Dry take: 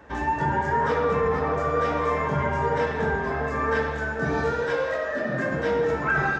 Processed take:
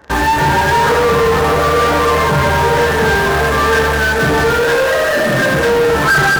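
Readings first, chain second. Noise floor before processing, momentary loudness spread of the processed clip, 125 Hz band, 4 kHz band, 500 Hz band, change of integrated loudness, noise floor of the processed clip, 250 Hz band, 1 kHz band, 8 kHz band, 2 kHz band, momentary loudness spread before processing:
−29 dBFS, 1 LU, +11.5 dB, +22.5 dB, +11.5 dB, +12.5 dB, −14 dBFS, +10.5 dB, +12.0 dB, can't be measured, +14.0 dB, 4 LU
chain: thirty-one-band graphic EQ 250 Hz −5 dB, 1,600 Hz +3 dB, 2,500 Hz −6 dB
in parallel at −6 dB: fuzz pedal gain 41 dB, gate −41 dBFS
on the sum: level +4 dB

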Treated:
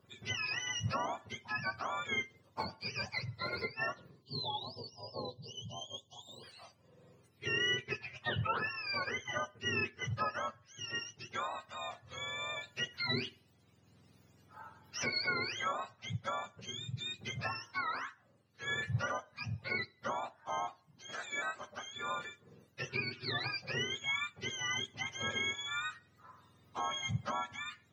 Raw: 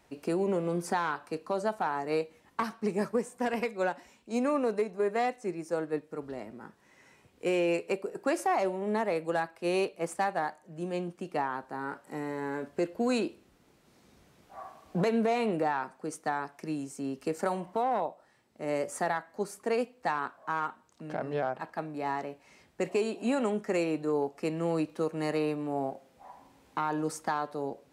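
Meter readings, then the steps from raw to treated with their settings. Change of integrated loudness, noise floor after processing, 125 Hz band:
−5.5 dB, −68 dBFS, −1.0 dB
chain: frequency axis turned over on the octave scale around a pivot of 1,000 Hz
time-frequency box erased 0:04.22–0:06.44, 1,100–2,800 Hz
level −4 dB

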